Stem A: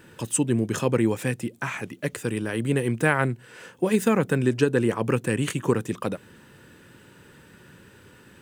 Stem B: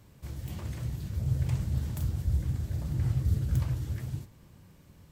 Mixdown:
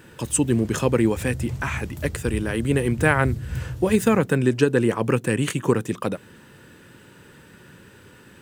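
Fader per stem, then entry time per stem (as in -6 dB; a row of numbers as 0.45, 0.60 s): +2.5, -1.5 dB; 0.00, 0.00 s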